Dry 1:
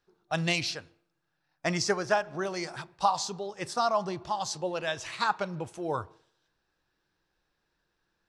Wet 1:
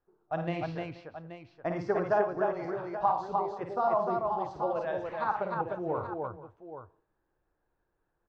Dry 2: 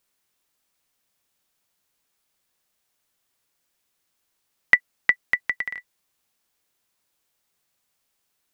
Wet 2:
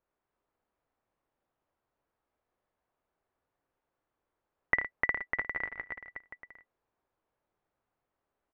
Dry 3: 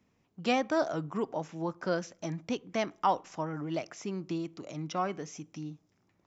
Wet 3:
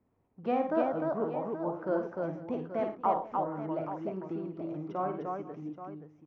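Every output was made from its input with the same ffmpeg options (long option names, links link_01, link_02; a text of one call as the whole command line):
ffmpeg -i in.wav -filter_complex "[0:a]lowpass=1000,equalizer=frequency=180:width_type=o:width=1.1:gain=-6,asplit=2[link_01][link_02];[link_02]aecho=0:1:53|82|114|302|479|829:0.501|0.2|0.2|0.708|0.126|0.282[link_03];[link_01][link_03]amix=inputs=2:normalize=0" out.wav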